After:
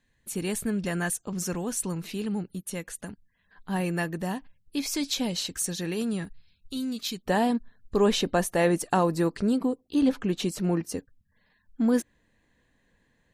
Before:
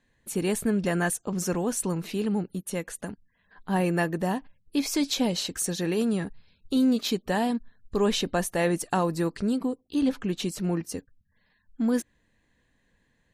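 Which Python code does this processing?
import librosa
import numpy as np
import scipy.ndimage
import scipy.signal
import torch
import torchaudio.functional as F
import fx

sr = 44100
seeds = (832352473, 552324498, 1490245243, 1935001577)

y = fx.peak_eq(x, sr, hz=540.0, db=fx.steps((0.0, -5.5), (6.25, -14.5), (7.27, 2.5)), octaves=2.9)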